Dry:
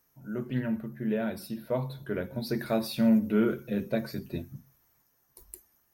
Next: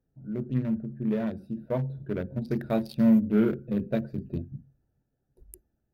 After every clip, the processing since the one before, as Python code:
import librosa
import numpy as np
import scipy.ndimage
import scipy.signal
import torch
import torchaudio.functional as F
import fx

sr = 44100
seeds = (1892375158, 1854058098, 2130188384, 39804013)

y = fx.wiener(x, sr, points=41)
y = fx.low_shelf(y, sr, hz=200.0, db=6.5)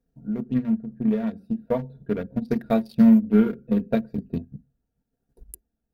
y = fx.transient(x, sr, attack_db=6, sustain_db=-5)
y = y + 0.58 * np.pad(y, (int(4.3 * sr / 1000.0), 0))[:len(y)]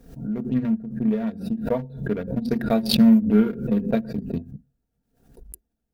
y = fx.pre_swell(x, sr, db_per_s=96.0)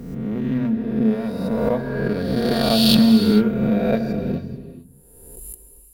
y = fx.spec_swells(x, sr, rise_s=1.47)
y = fx.rev_gated(y, sr, seeds[0], gate_ms=480, shape='flat', drr_db=7.5)